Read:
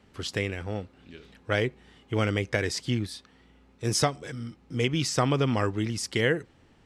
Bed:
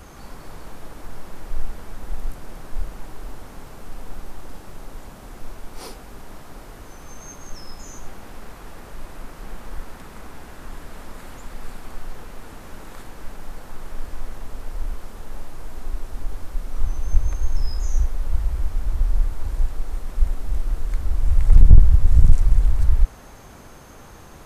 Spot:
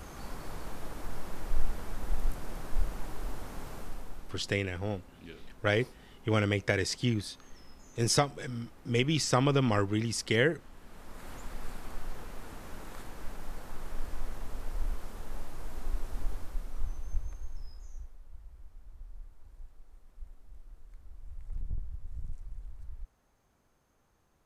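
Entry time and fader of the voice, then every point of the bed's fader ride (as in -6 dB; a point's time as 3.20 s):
4.15 s, -1.5 dB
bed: 3.78 s -2.5 dB
4.52 s -17.5 dB
10.72 s -17.5 dB
11.31 s -5.5 dB
16.26 s -5.5 dB
18.26 s -27.5 dB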